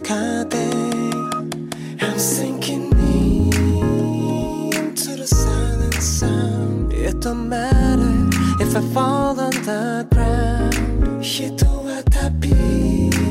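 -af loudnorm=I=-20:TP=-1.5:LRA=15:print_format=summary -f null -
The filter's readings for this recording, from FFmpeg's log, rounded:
Input Integrated:    -19.1 LUFS
Input True Peak:      -6.5 dBTP
Input LRA:             1.4 LU
Input Threshold:     -29.1 LUFS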